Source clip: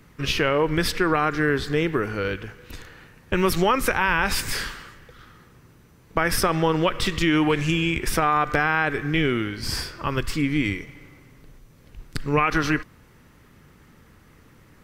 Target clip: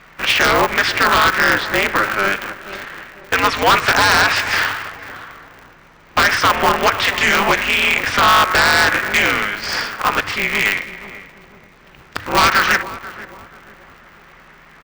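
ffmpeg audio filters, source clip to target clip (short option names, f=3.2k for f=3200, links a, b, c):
-filter_complex "[0:a]lowpass=f=6.7k:w=0.5412,lowpass=f=6.7k:w=1.3066,acrossover=split=500 2600:gain=0.112 1 0.158[a][b][c];[a][b][c]amix=inputs=3:normalize=0,aeval=exprs='val(0)+0.000891*(sin(2*PI*60*n/s)+sin(2*PI*2*60*n/s)/2+sin(2*PI*3*60*n/s)/3+sin(2*PI*4*60*n/s)/4+sin(2*PI*5*60*n/s)/5)':c=same,tiltshelf=f=910:g=-5,aeval=exprs='0.422*sin(PI/2*3.16*val(0)/0.422)':c=same,asplit=2[d][e];[e]adelay=486,lowpass=f=900:p=1,volume=-12.5dB,asplit=2[f][g];[g]adelay=486,lowpass=f=900:p=1,volume=0.46,asplit=2[h][i];[i]adelay=486,lowpass=f=900:p=1,volume=0.46,asplit=2[j][k];[k]adelay=486,lowpass=f=900:p=1,volume=0.46,asplit=2[l][m];[m]adelay=486,lowpass=f=900:p=1,volume=0.46[n];[d][f][h][j][l][n]amix=inputs=6:normalize=0,aeval=exprs='val(0)*sgn(sin(2*PI*100*n/s))':c=same"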